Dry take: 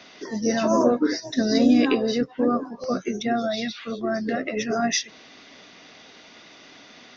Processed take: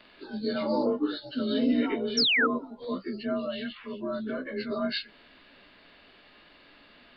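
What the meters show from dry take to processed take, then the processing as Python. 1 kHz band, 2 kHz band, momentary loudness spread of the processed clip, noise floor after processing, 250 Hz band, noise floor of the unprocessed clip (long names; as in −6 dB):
−8.0 dB, +0.5 dB, 13 LU, −57 dBFS, −7.5 dB, −49 dBFS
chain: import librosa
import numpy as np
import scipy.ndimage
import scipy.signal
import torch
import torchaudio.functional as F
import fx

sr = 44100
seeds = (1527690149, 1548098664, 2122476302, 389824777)

y = fx.partial_stretch(x, sr, pct=91)
y = fx.dmg_noise_colour(y, sr, seeds[0], colour='brown', level_db=-64.0)
y = fx.spec_paint(y, sr, seeds[1], shape='fall', start_s=2.17, length_s=0.3, low_hz=1200.0, high_hz=5900.0, level_db=-18.0)
y = y * librosa.db_to_amplitude(-5.5)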